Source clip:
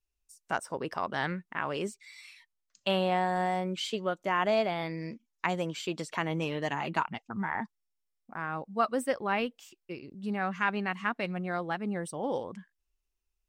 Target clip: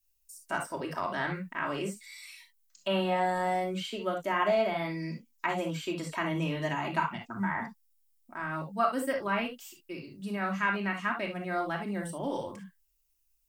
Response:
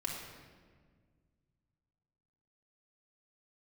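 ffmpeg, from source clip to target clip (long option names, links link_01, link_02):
-filter_complex "[0:a]acrossover=split=2600[link_01][link_02];[link_02]acompressor=threshold=-54dB:ratio=4:attack=1:release=60[link_03];[link_01][link_03]amix=inputs=2:normalize=0,aemphasis=mode=production:type=75fm[link_04];[1:a]atrim=start_sample=2205,atrim=end_sample=3528[link_05];[link_04][link_05]afir=irnorm=-1:irlink=0"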